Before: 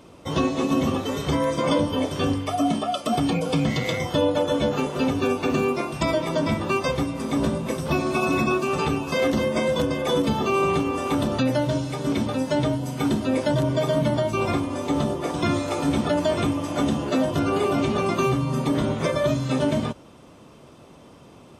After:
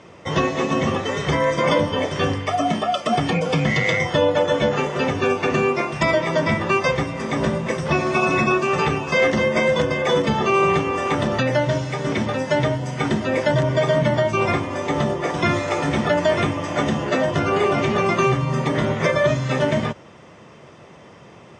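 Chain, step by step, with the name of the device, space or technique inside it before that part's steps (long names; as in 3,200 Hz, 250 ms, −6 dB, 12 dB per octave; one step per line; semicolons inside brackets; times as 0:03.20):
car door speaker (loudspeaker in its box 89–7,000 Hz, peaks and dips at 270 Hz −9 dB, 1,900 Hz +10 dB, 4,100 Hz −6 dB)
level +4.5 dB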